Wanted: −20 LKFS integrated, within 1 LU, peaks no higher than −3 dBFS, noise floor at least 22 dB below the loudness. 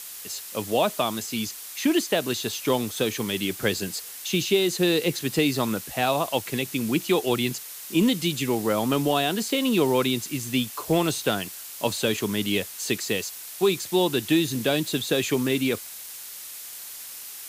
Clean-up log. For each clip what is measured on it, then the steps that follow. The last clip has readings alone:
background noise floor −40 dBFS; target noise floor −47 dBFS; integrated loudness −25.0 LKFS; sample peak −10.0 dBFS; target loudness −20.0 LKFS
→ noise reduction from a noise print 7 dB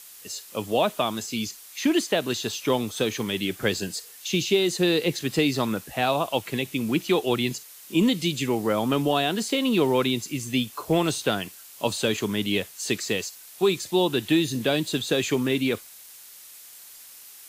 background noise floor −46 dBFS; target noise floor −47 dBFS
→ noise reduction from a noise print 6 dB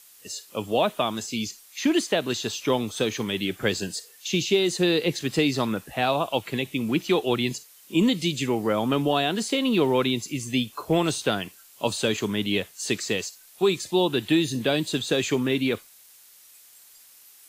background noise floor −52 dBFS; integrated loudness −25.0 LKFS; sample peak −10.0 dBFS; target loudness −20.0 LKFS
→ level +5 dB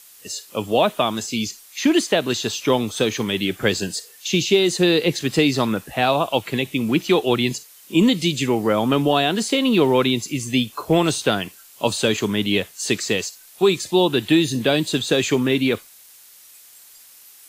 integrated loudness −20.0 LKFS; sample peak −5.0 dBFS; background noise floor −47 dBFS

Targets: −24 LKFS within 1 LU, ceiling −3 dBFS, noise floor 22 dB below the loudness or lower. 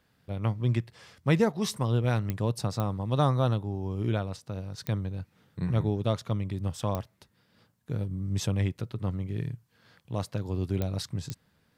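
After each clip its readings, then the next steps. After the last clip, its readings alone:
number of clicks 6; integrated loudness −30.5 LKFS; sample peak −12.0 dBFS; target loudness −24.0 LKFS
→ click removal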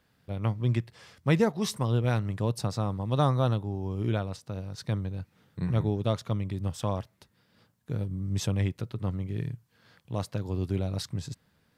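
number of clicks 0; integrated loudness −30.5 LKFS; sample peak −12.0 dBFS; target loudness −24.0 LKFS
→ level +6.5 dB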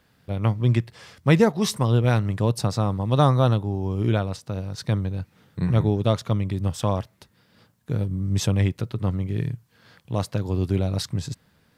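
integrated loudness −24.0 LKFS; sample peak −5.5 dBFS; background noise floor −63 dBFS

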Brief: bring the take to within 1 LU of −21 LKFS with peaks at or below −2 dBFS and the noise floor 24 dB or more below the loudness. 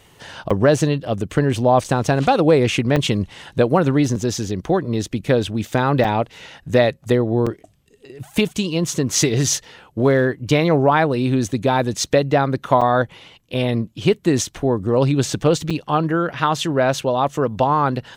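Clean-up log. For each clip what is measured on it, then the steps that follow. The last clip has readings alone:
number of dropouts 7; longest dropout 5.5 ms; integrated loudness −19.0 LKFS; sample peak −3.5 dBFS; target loudness −21.0 LKFS
→ repair the gap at 0:00.50/0:01.84/0:02.96/0:06.04/0:07.46/0:12.81/0:15.70, 5.5 ms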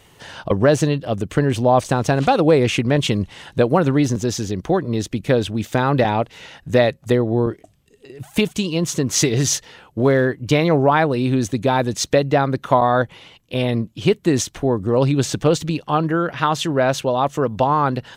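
number of dropouts 0; integrated loudness −19.0 LKFS; sample peak −3.5 dBFS; target loudness −21.0 LKFS
→ level −2 dB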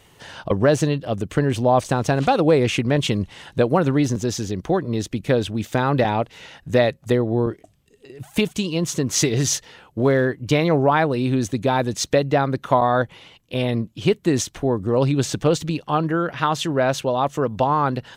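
integrated loudness −21.0 LKFS; sample peak −5.5 dBFS; background noise floor −56 dBFS

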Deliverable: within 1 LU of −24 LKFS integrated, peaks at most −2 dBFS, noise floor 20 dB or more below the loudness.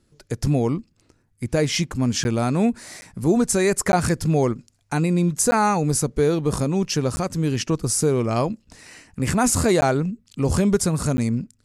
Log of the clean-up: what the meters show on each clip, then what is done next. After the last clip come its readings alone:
number of dropouts 7; longest dropout 10 ms; integrated loudness −21.5 LKFS; sample peak −6.0 dBFS; target loudness −24.0 LKFS
→ repair the gap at 0:02.24/0:03.01/0:03.92/0:05.51/0:07.16/0:09.81/0:11.17, 10 ms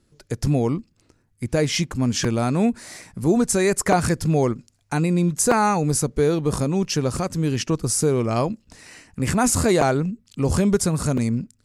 number of dropouts 0; integrated loudness −21.5 LKFS; sample peak −3.0 dBFS; target loudness −24.0 LKFS
→ level −2.5 dB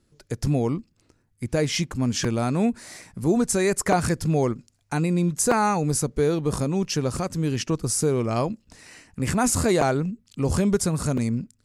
integrated loudness −24.0 LKFS; sample peak −5.5 dBFS; background noise floor −66 dBFS

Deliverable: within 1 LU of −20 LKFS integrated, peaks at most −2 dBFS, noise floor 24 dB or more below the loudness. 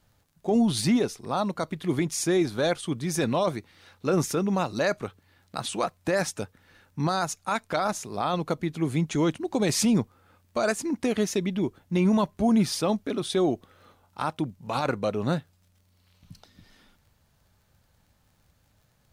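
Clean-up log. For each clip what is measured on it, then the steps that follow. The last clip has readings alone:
crackle rate 25 per second; integrated loudness −27.0 LKFS; sample peak −13.5 dBFS; target loudness −20.0 LKFS
→ click removal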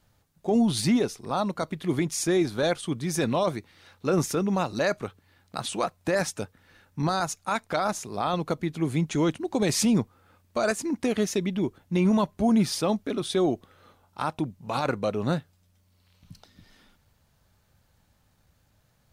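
crackle rate 0 per second; integrated loudness −27.0 LKFS; sample peak −13.5 dBFS; target loudness −20.0 LKFS
→ level +7 dB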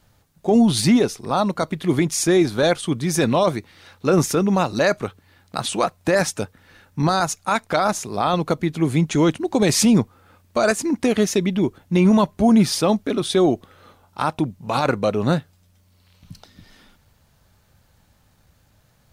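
integrated loudness −20.0 LKFS; sample peak −6.5 dBFS; background noise floor −59 dBFS

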